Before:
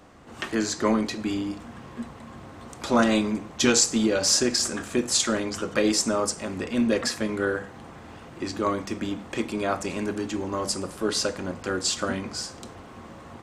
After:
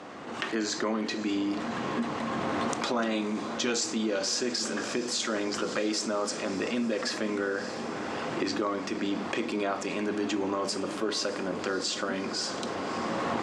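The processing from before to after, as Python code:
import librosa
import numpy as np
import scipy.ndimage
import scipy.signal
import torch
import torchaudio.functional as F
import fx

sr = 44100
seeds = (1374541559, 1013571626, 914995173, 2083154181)

y = fx.recorder_agc(x, sr, target_db=-12.0, rise_db_per_s=17.0, max_gain_db=30)
y = fx.bandpass_edges(y, sr, low_hz=220.0, high_hz=5700.0)
y = fx.echo_diffused(y, sr, ms=607, feedback_pct=63, wet_db=-15.0)
y = fx.env_flatten(y, sr, amount_pct=50)
y = y * 10.0 ** (-8.5 / 20.0)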